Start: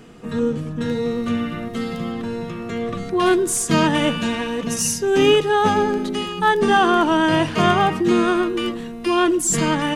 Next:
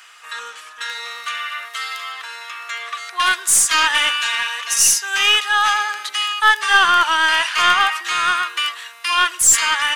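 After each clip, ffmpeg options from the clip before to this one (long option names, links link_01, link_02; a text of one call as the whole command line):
ffmpeg -i in.wav -filter_complex "[0:a]highpass=frequency=1200:width=0.5412,highpass=frequency=1200:width=1.3066,asplit=2[link_01][link_02];[link_02]aeval=exprs='clip(val(0),-1,0.0473)':channel_layout=same,volume=-4dB[link_03];[link_01][link_03]amix=inputs=2:normalize=0,volume=5.5dB" out.wav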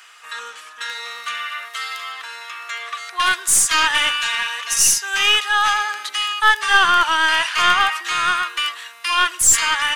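ffmpeg -i in.wav -af "lowshelf=frequency=190:gain=7.5,volume=-1dB" out.wav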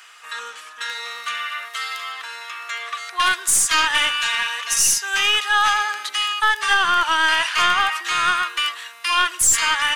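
ffmpeg -i in.wav -af "alimiter=limit=-7dB:level=0:latency=1:release=127" out.wav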